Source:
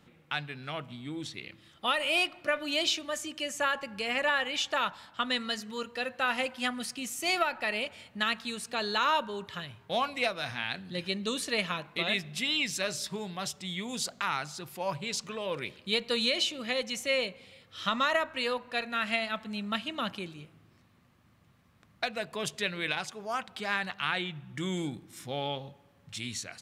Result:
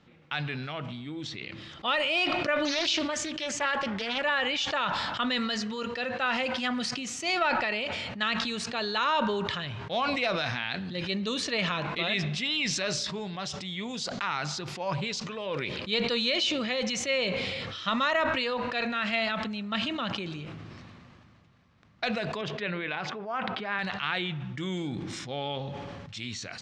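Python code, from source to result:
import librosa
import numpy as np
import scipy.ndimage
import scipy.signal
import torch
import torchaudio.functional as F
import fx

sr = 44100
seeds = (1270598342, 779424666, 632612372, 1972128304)

y = fx.doppler_dist(x, sr, depth_ms=0.34, at=(2.65, 4.23))
y = fx.bandpass_edges(y, sr, low_hz=140.0, high_hz=2300.0, at=(22.41, 23.79))
y = scipy.signal.sosfilt(scipy.signal.butter(4, 6100.0, 'lowpass', fs=sr, output='sos'), y)
y = fx.sustainer(y, sr, db_per_s=21.0)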